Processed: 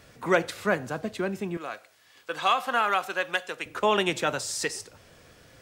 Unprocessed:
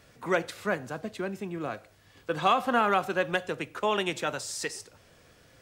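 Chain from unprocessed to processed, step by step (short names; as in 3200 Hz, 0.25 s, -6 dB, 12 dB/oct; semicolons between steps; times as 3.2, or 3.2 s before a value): 1.57–3.66 HPF 1200 Hz 6 dB/oct; gain +4 dB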